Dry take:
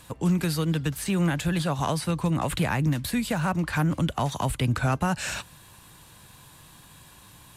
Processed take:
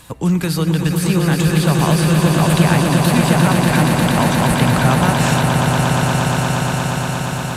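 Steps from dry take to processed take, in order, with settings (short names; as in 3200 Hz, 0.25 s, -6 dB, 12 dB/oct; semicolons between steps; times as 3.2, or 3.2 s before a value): swelling echo 0.118 s, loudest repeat 8, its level -7 dB; gain +7 dB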